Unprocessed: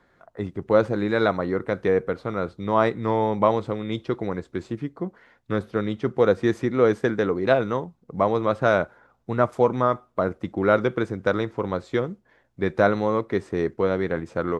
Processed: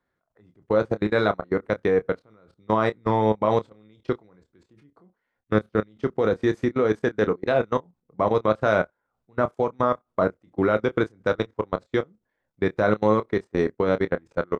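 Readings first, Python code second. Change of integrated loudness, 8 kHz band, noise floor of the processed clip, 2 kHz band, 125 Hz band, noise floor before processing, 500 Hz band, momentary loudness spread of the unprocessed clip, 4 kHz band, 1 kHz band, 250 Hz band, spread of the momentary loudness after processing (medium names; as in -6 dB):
-0.5 dB, no reading, -79 dBFS, -1.0 dB, -1.5 dB, -64 dBFS, -1.0 dB, 10 LU, -1.0 dB, -1.0 dB, -1.0 dB, 8 LU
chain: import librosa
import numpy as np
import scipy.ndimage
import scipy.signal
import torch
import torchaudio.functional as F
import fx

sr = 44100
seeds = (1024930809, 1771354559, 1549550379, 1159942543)

y = fx.level_steps(x, sr, step_db=24)
y = fx.doubler(y, sr, ms=28.0, db=-9)
y = fx.upward_expand(y, sr, threshold_db=-46.0, expansion=1.5)
y = F.gain(torch.from_numpy(y), 5.5).numpy()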